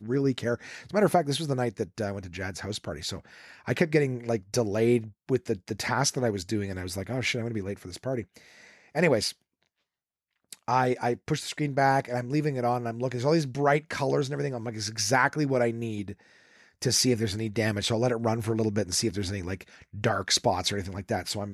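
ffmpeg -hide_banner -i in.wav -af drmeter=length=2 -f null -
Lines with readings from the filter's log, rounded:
Channel 1: DR: 14.5
Overall DR: 14.5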